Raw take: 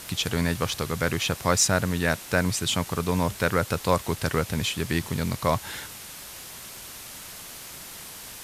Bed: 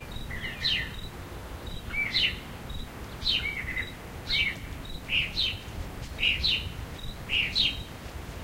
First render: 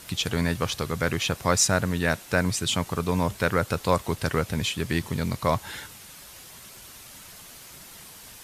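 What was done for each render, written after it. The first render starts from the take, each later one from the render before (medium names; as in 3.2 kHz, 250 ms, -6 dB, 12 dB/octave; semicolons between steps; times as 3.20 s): noise reduction 6 dB, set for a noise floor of -42 dBFS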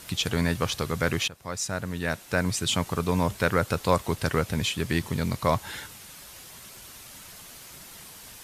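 1.28–2.73 s: fade in, from -19 dB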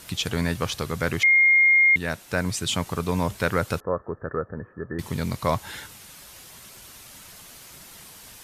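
1.23–1.96 s: bleep 2.13 kHz -13.5 dBFS; 3.80–4.99 s: rippled Chebyshev low-pass 1.8 kHz, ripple 9 dB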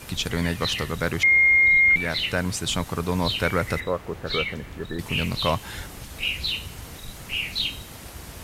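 add bed -1.5 dB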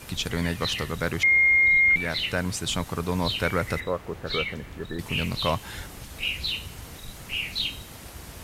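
trim -2 dB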